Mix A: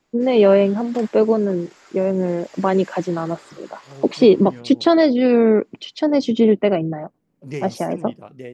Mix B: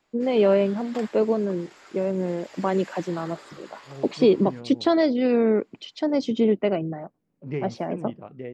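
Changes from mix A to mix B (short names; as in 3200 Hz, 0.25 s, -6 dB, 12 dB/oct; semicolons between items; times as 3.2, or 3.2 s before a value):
first voice -6.0 dB; second voice: add air absorption 380 m; background: add bell 6100 Hz -5 dB 0.5 oct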